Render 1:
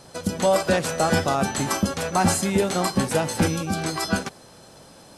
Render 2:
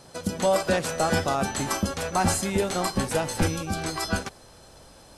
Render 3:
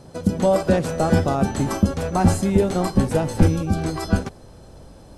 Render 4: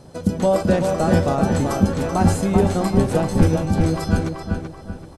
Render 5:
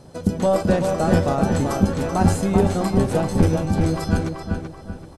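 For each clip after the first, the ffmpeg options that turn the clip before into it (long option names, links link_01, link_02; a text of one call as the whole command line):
ffmpeg -i in.wav -af "asubboost=boost=6:cutoff=67,volume=-2.5dB" out.wav
ffmpeg -i in.wav -af "tiltshelf=frequency=680:gain=7.5,volume=3dB" out.wav
ffmpeg -i in.wav -filter_complex "[0:a]asplit=2[link_01][link_02];[link_02]adelay=384,lowpass=frequency=3300:poles=1,volume=-4.5dB,asplit=2[link_03][link_04];[link_04]adelay=384,lowpass=frequency=3300:poles=1,volume=0.38,asplit=2[link_05][link_06];[link_06]adelay=384,lowpass=frequency=3300:poles=1,volume=0.38,asplit=2[link_07][link_08];[link_08]adelay=384,lowpass=frequency=3300:poles=1,volume=0.38,asplit=2[link_09][link_10];[link_10]adelay=384,lowpass=frequency=3300:poles=1,volume=0.38[link_11];[link_01][link_03][link_05][link_07][link_09][link_11]amix=inputs=6:normalize=0" out.wav
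ffmpeg -i in.wav -af "aeval=exprs='0.794*(cos(1*acos(clip(val(0)/0.794,-1,1)))-cos(1*PI/2))+0.178*(cos(2*acos(clip(val(0)/0.794,-1,1)))-cos(2*PI/2))':channel_layout=same,volume=-1dB" out.wav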